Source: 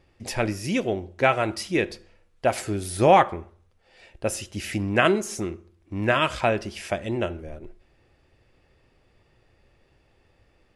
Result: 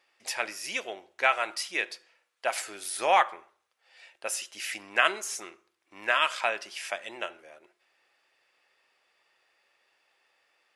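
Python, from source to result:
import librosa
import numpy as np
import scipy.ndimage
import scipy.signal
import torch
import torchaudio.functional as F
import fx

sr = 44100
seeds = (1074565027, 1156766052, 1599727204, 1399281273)

y = scipy.signal.sosfilt(scipy.signal.butter(2, 1000.0, 'highpass', fs=sr, output='sos'), x)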